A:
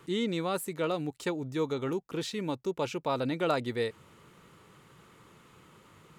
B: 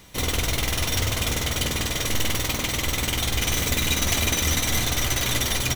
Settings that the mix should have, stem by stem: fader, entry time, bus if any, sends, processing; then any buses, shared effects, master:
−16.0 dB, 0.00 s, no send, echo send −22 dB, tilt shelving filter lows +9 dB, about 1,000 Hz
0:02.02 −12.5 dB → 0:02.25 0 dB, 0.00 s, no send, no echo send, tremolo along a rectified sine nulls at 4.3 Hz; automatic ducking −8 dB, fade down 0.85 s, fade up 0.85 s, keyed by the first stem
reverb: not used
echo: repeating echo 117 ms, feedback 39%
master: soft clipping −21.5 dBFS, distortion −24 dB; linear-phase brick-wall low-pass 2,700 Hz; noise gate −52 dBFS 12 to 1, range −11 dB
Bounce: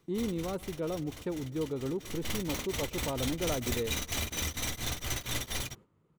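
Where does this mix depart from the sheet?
stem A −16.0 dB → −8.5 dB
master: missing linear-phase brick-wall low-pass 2,700 Hz

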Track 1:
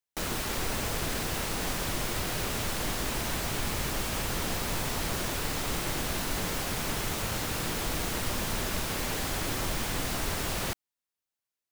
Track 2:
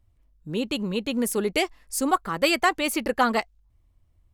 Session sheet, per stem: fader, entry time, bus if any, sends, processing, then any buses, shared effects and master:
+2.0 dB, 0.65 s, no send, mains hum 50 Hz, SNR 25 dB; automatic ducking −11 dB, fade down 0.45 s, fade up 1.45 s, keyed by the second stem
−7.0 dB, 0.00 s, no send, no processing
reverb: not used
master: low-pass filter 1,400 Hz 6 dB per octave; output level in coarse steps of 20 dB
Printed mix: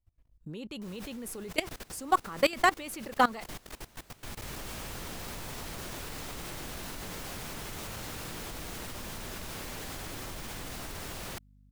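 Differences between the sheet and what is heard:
stem 2 −7.0 dB → +0.5 dB
master: missing low-pass filter 1,400 Hz 6 dB per octave

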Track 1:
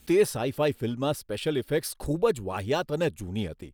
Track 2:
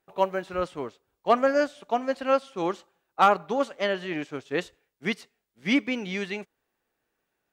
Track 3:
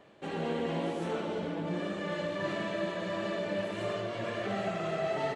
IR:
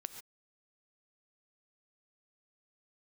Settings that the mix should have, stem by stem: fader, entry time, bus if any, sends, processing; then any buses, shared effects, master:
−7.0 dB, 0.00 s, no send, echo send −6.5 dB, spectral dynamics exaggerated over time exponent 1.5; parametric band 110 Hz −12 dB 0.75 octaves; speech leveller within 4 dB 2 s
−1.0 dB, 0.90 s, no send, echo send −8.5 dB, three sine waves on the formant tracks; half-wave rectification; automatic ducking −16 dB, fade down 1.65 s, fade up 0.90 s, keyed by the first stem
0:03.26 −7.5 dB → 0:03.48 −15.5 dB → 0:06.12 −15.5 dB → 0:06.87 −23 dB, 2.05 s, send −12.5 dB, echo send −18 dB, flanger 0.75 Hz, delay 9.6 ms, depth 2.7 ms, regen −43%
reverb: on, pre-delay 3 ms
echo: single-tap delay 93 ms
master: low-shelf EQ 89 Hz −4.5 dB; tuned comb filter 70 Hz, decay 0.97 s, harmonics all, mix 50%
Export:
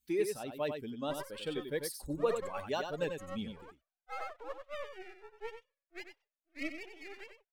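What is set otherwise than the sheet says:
stem 2 −1.0 dB → −11.0 dB
stem 3: muted
reverb: off
master: missing tuned comb filter 70 Hz, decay 0.97 s, harmonics all, mix 50%

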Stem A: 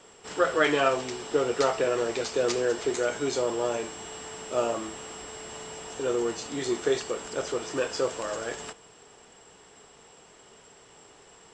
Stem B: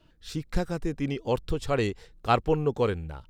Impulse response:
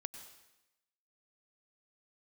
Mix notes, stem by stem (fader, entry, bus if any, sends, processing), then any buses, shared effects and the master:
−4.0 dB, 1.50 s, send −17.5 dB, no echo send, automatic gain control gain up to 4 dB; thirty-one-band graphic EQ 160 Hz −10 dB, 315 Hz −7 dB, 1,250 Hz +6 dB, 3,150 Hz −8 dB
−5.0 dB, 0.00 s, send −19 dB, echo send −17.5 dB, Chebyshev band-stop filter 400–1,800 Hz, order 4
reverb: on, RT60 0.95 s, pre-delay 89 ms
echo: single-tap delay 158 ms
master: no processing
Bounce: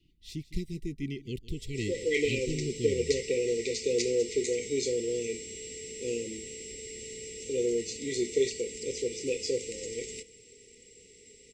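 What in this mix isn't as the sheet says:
stem B: send off
master: extra linear-phase brick-wall band-stop 520–1,900 Hz

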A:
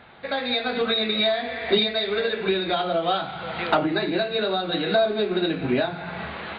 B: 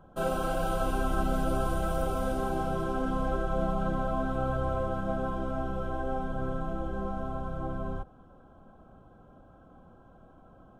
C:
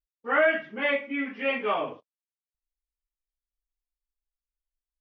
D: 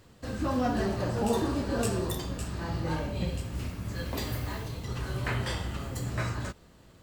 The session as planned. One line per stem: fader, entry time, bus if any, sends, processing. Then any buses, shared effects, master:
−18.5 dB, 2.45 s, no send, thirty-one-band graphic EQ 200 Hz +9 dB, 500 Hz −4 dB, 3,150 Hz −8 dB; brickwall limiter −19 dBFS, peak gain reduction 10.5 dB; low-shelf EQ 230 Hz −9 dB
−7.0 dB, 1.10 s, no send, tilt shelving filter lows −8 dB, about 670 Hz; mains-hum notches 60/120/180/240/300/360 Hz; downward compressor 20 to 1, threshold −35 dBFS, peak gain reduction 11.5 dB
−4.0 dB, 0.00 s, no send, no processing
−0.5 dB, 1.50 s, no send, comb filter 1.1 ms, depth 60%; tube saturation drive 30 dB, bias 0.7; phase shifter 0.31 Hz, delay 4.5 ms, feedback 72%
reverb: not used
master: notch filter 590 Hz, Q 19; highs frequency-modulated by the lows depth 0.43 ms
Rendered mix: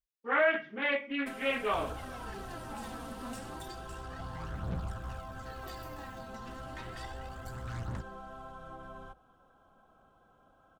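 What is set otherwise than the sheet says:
stem A: muted
stem D −0.5 dB → −11.5 dB

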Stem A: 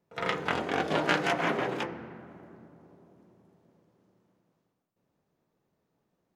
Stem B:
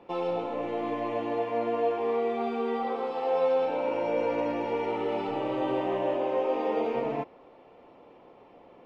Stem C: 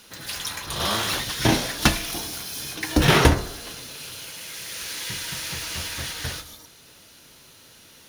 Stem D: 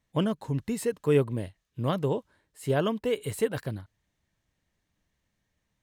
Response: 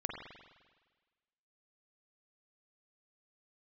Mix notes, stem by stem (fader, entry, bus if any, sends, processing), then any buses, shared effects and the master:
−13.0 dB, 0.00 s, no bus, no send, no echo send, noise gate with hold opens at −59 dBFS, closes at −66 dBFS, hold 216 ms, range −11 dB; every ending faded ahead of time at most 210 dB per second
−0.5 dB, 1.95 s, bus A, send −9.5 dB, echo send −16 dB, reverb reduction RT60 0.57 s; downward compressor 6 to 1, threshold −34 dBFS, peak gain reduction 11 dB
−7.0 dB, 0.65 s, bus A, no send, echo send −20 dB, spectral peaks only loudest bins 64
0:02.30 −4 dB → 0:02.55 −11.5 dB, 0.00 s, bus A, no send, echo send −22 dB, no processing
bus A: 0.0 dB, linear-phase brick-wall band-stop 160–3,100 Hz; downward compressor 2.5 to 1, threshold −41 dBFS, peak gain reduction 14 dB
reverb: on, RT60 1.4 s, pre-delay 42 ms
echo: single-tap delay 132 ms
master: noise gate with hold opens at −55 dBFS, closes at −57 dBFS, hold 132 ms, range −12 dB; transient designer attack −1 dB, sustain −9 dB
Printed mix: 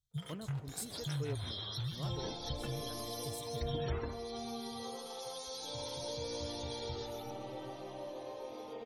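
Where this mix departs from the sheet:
stem A −13.0 dB → −24.5 dB
stem D −4.0 dB → +3.0 dB
master: missing transient designer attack −1 dB, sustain −9 dB

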